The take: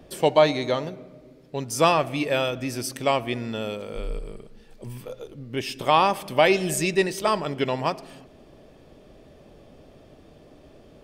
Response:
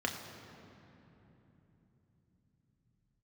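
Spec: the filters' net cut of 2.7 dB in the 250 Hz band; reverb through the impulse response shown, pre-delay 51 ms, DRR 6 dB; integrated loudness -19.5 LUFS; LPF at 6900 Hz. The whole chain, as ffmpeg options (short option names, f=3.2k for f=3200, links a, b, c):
-filter_complex "[0:a]lowpass=6.9k,equalizer=f=250:t=o:g=-4,asplit=2[a][b];[1:a]atrim=start_sample=2205,adelay=51[c];[b][c]afir=irnorm=-1:irlink=0,volume=-12dB[d];[a][d]amix=inputs=2:normalize=0,volume=4.5dB"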